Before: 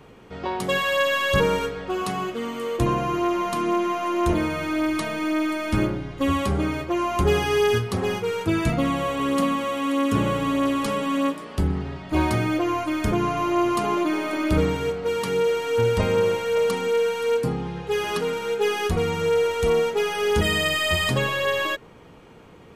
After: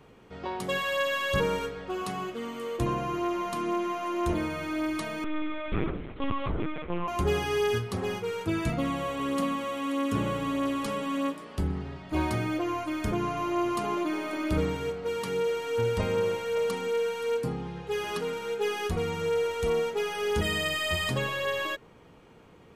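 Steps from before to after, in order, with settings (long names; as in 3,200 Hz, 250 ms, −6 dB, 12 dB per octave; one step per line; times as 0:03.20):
0:05.24–0:07.08: linear-prediction vocoder at 8 kHz pitch kept
level −6.5 dB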